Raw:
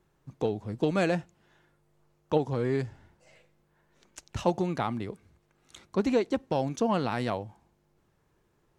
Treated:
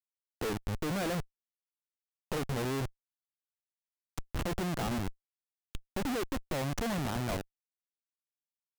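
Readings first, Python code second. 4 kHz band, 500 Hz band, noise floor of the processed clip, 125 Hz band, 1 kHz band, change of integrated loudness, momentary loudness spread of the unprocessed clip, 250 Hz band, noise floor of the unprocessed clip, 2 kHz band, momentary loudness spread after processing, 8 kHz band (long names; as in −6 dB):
+0.5 dB, −8.5 dB, below −85 dBFS, −2.5 dB, −6.0 dB, −5.5 dB, 10 LU, −5.5 dB, −70 dBFS, −1.5 dB, 13 LU, +4.5 dB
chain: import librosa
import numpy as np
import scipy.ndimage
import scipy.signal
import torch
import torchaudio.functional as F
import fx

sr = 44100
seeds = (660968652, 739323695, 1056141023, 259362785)

y = fx.noise_reduce_blind(x, sr, reduce_db=8)
y = fx.schmitt(y, sr, flips_db=-34.0)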